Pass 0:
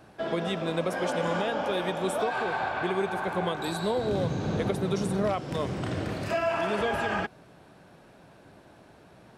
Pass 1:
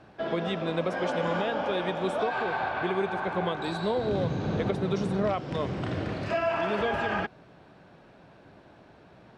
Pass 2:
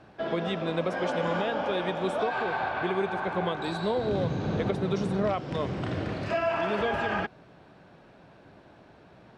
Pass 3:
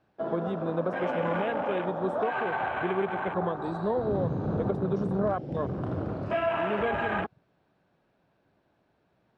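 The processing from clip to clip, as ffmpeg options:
-af "lowpass=4.6k"
-af anull
-af "afwtdn=0.02"

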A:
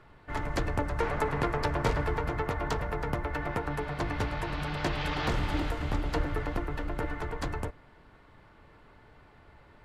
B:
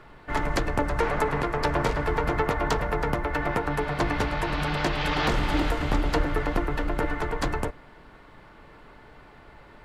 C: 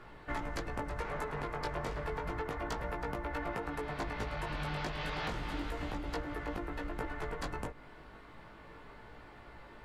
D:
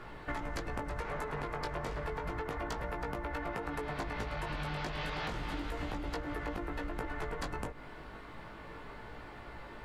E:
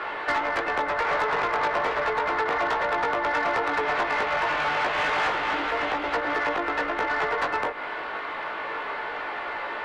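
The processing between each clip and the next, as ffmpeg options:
-af "equalizer=f=90:w=1.6:g=-7.5,alimiter=limit=-19.5dB:level=0:latency=1:release=430,volume=7.5dB"
-af "acompressor=threshold=-32dB:ratio=5,flanger=delay=17:depth=2.2:speed=0.32"
-af "acompressor=threshold=-39dB:ratio=6,volume=5dB"
-filter_complex "[0:a]acrossover=split=340 3800:gain=0.178 1 0.141[a][b][c];[a][b][c]amix=inputs=3:normalize=0,acrossover=split=2800[d][e];[e]acompressor=threshold=-58dB:ratio=4:attack=1:release=60[f];[d][f]amix=inputs=2:normalize=0,asplit=2[g][h];[h]highpass=f=720:p=1,volume=18dB,asoftclip=type=tanh:threshold=-24dB[i];[g][i]amix=inputs=2:normalize=0,lowpass=f=6.2k:p=1,volume=-6dB,volume=8.5dB"

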